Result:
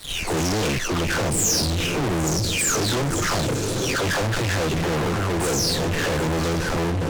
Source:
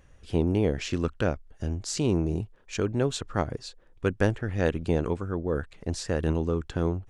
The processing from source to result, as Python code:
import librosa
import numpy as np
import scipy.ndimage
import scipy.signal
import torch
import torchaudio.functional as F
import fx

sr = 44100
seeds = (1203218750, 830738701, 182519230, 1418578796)

p1 = fx.spec_delay(x, sr, highs='early', ms=539)
p2 = fx.echo_diffused(p1, sr, ms=910, feedback_pct=40, wet_db=-13.5)
p3 = fx.level_steps(p2, sr, step_db=10)
p4 = p2 + F.gain(torch.from_numpy(p3), 0.5).numpy()
p5 = fx.fuzz(p4, sr, gain_db=43.0, gate_db=-50.0)
p6 = fx.dynamic_eq(p5, sr, hz=6500.0, q=1.2, threshold_db=-30.0, ratio=4.0, max_db=5)
y = F.gain(torch.from_numpy(p6), -8.5).numpy()